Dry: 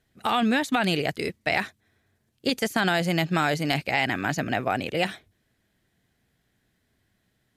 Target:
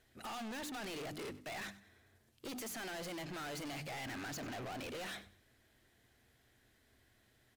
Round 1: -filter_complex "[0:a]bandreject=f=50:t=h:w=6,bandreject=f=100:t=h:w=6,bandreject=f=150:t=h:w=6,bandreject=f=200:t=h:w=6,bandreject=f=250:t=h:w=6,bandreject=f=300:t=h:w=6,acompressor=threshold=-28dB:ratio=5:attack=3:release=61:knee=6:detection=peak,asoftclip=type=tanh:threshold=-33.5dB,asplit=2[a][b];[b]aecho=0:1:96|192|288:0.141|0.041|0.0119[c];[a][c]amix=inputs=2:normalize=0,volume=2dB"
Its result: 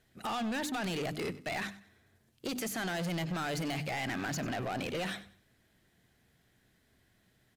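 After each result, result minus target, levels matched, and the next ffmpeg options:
125 Hz band +4.0 dB; soft clip: distortion -5 dB
-filter_complex "[0:a]bandreject=f=50:t=h:w=6,bandreject=f=100:t=h:w=6,bandreject=f=150:t=h:w=6,bandreject=f=200:t=h:w=6,bandreject=f=250:t=h:w=6,bandreject=f=300:t=h:w=6,acompressor=threshold=-28dB:ratio=5:attack=3:release=61:knee=6:detection=peak,equalizer=f=170:t=o:w=0.46:g=-12.5,asoftclip=type=tanh:threshold=-33.5dB,asplit=2[a][b];[b]aecho=0:1:96|192|288:0.141|0.041|0.0119[c];[a][c]amix=inputs=2:normalize=0,volume=2dB"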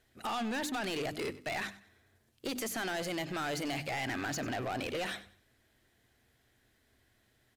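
soft clip: distortion -5 dB
-filter_complex "[0:a]bandreject=f=50:t=h:w=6,bandreject=f=100:t=h:w=6,bandreject=f=150:t=h:w=6,bandreject=f=200:t=h:w=6,bandreject=f=250:t=h:w=6,bandreject=f=300:t=h:w=6,acompressor=threshold=-28dB:ratio=5:attack=3:release=61:knee=6:detection=peak,equalizer=f=170:t=o:w=0.46:g=-12.5,asoftclip=type=tanh:threshold=-44.5dB,asplit=2[a][b];[b]aecho=0:1:96|192|288:0.141|0.041|0.0119[c];[a][c]amix=inputs=2:normalize=0,volume=2dB"

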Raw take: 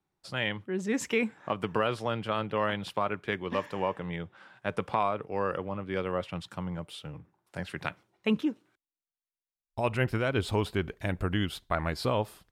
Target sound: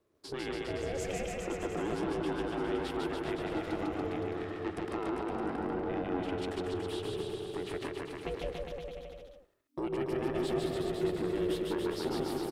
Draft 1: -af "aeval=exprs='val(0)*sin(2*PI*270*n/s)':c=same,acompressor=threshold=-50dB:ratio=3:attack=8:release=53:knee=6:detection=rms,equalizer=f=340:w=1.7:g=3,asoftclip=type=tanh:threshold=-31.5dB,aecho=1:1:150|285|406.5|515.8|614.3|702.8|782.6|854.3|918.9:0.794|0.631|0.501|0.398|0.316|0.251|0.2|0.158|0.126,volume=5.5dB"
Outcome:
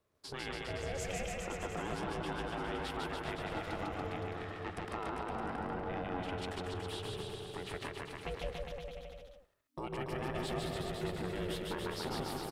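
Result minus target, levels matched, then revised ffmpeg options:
250 Hz band -3.0 dB
-af "aeval=exprs='val(0)*sin(2*PI*270*n/s)':c=same,acompressor=threshold=-50dB:ratio=3:attack=8:release=53:knee=6:detection=rms,equalizer=f=340:w=1.7:g=14.5,asoftclip=type=tanh:threshold=-31.5dB,aecho=1:1:150|285|406.5|515.8|614.3|702.8|782.6|854.3|918.9:0.794|0.631|0.501|0.398|0.316|0.251|0.2|0.158|0.126,volume=5.5dB"

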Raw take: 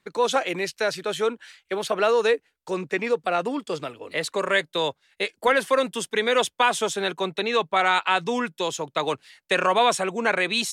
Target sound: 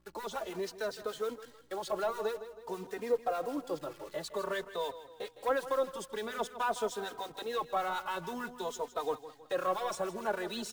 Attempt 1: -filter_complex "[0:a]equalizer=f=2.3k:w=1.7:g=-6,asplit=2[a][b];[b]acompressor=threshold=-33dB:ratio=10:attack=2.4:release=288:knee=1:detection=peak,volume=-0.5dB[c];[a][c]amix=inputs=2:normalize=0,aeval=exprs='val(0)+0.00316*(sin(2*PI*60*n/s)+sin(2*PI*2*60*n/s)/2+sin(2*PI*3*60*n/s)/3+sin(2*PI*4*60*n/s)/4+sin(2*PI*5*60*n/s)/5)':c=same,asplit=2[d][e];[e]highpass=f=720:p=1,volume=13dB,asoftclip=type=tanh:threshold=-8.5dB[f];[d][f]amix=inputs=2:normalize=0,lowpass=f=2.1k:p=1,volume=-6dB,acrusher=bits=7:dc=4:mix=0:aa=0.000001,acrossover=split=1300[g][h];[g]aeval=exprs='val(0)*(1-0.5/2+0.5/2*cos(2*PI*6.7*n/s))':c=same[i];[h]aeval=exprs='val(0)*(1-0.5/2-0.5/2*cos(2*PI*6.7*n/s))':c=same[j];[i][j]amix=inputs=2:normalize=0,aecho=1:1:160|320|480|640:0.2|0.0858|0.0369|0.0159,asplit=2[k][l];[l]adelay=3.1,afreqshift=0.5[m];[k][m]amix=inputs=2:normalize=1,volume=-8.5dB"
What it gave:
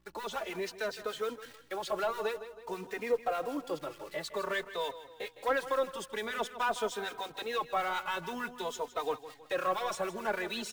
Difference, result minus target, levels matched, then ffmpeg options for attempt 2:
2000 Hz band +3.5 dB
-filter_complex "[0:a]equalizer=f=2.3k:w=1.7:g=-18,asplit=2[a][b];[b]acompressor=threshold=-33dB:ratio=10:attack=2.4:release=288:knee=1:detection=peak,volume=-0.5dB[c];[a][c]amix=inputs=2:normalize=0,aeval=exprs='val(0)+0.00316*(sin(2*PI*60*n/s)+sin(2*PI*2*60*n/s)/2+sin(2*PI*3*60*n/s)/3+sin(2*PI*4*60*n/s)/4+sin(2*PI*5*60*n/s)/5)':c=same,asplit=2[d][e];[e]highpass=f=720:p=1,volume=13dB,asoftclip=type=tanh:threshold=-8.5dB[f];[d][f]amix=inputs=2:normalize=0,lowpass=f=2.1k:p=1,volume=-6dB,acrusher=bits=7:dc=4:mix=0:aa=0.000001,acrossover=split=1300[g][h];[g]aeval=exprs='val(0)*(1-0.5/2+0.5/2*cos(2*PI*6.7*n/s))':c=same[i];[h]aeval=exprs='val(0)*(1-0.5/2-0.5/2*cos(2*PI*6.7*n/s))':c=same[j];[i][j]amix=inputs=2:normalize=0,aecho=1:1:160|320|480|640:0.2|0.0858|0.0369|0.0159,asplit=2[k][l];[l]adelay=3.1,afreqshift=0.5[m];[k][m]amix=inputs=2:normalize=1,volume=-8.5dB"

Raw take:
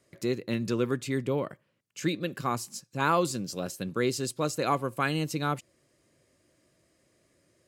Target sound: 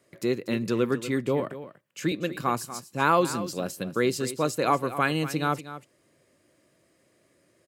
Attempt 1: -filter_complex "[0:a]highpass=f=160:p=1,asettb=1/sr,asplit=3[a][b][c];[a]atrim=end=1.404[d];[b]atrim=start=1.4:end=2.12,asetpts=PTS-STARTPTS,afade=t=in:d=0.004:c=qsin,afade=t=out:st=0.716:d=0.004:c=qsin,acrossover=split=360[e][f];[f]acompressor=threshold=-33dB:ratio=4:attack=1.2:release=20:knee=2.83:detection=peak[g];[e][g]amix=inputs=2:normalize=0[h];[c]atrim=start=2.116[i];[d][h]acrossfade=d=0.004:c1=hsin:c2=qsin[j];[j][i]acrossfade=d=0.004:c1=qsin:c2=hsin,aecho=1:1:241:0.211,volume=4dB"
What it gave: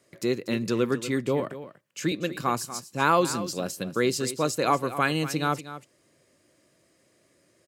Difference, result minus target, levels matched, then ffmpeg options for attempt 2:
8000 Hz band +3.0 dB
-filter_complex "[0:a]highpass=f=160:p=1,equalizer=f=5.9k:t=o:w=1.3:g=-4.5,asettb=1/sr,asplit=3[a][b][c];[a]atrim=end=1.404[d];[b]atrim=start=1.4:end=2.12,asetpts=PTS-STARTPTS,afade=t=in:d=0.004:c=qsin,afade=t=out:st=0.716:d=0.004:c=qsin,acrossover=split=360[e][f];[f]acompressor=threshold=-33dB:ratio=4:attack=1.2:release=20:knee=2.83:detection=peak[g];[e][g]amix=inputs=2:normalize=0[h];[c]atrim=start=2.116[i];[d][h]acrossfade=d=0.004:c1=hsin:c2=qsin[j];[j][i]acrossfade=d=0.004:c1=qsin:c2=hsin,aecho=1:1:241:0.211,volume=4dB"

